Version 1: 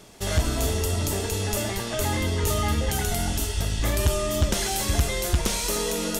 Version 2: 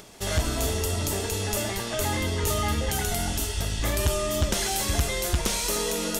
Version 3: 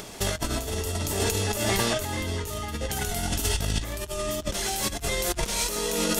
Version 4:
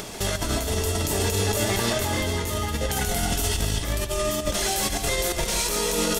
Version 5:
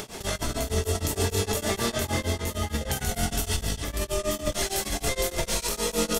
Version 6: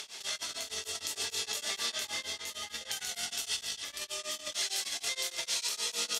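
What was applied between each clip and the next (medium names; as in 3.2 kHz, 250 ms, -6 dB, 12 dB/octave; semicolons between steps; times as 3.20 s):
upward compressor, threshold -43 dBFS; bass shelf 350 Hz -3 dB
compressor with a negative ratio -30 dBFS, ratio -0.5; trim +3 dB
peak limiter -19.5 dBFS, peak gain reduction 8 dB; on a send: loudspeakers at several distances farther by 49 m -11 dB, 95 m -10 dB; on the sum: trim +4.5 dB
doubling 23 ms -11.5 dB; reverberation, pre-delay 4 ms, DRR 12.5 dB; tremolo of two beating tones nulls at 6.5 Hz; trim -1 dB
band-pass filter 4.2 kHz, Q 1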